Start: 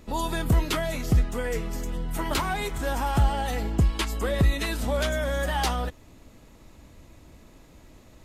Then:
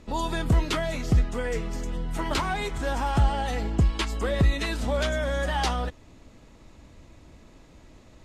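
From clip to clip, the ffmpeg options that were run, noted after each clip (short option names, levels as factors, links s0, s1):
-af "lowpass=7600"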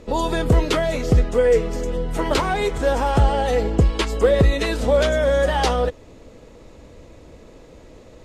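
-af "equalizer=f=480:w=2.3:g=12,volume=1.68"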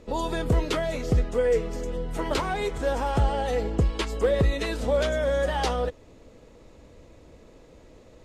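-af "asoftclip=type=hard:threshold=0.447,volume=0.473"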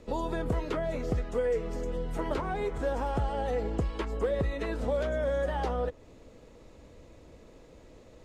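-filter_complex "[0:a]acrossover=split=640|2000[s0][s1][s2];[s0]acompressor=threshold=0.0501:ratio=4[s3];[s1]acompressor=threshold=0.02:ratio=4[s4];[s2]acompressor=threshold=0.00251:ratio=4[s5];[s3][s4][s5]amix=inputs=3:normalize=0,volume=0.794"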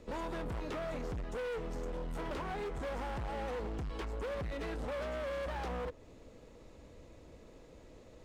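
-af "volume=50.1,asoftclip=hard,volume=0.02,volume=0.75"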